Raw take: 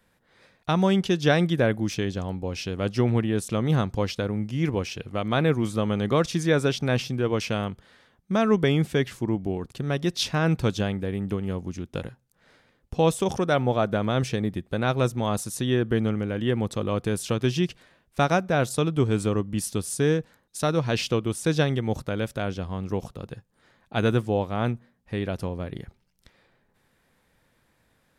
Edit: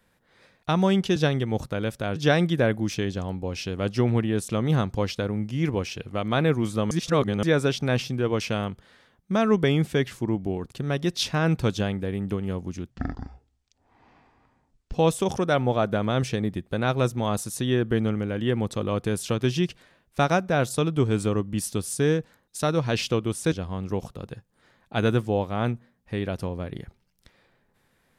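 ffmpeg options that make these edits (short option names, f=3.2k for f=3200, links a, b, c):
-filter_complex "[0:a]asplit=8[a][b][c][d][e][f][g][h];[a]atrim=end=1.162[i];[b]atrim=start=21.518:end=22.522[j];[c]atrim=start=1.158:end=5.912[k];[d]atrim=start=5.908:end=6.432,asetpts=PTS-STARTPTS,areverse[l];[e]atrim=start=6.428:end=11.904[m];[f]atrim=start=11.9:end=12.94,asetpts=PTS-STARTPTS,asetrate=22491,aresample=44100,atrim=end_sample=89929,asetpts=PTS-STARTPTS[n];[g]atrim=start=12.936:end=21.522[o];[h]atrim=start=22.518[p];[i][j]acrossfade=d=0.004:c1=hsin:c2=hsin[q];[q][k]acrossfade=d=0.004:c1=hsin:c2=hsin[r];[r][l]acrossfade=d=0.004:c1=hsin:c2=hsin[s];[s][m]acrossfade=d=0.004:c1=hsin:c2=hsin[t];[t][n]acrossfade=d=0.004:c1=hsin:c2=hsin[u];[u][o]acrossfade=d=0.004:c1=hsin:c2=hsin[v];[v][p]acrossfade=d=0.004:c1=hsin:c2=hsin"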